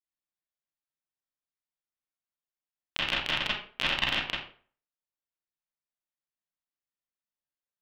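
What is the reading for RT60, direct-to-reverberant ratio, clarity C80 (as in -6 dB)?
0.45 s, -8.5 dB, 6.5 dB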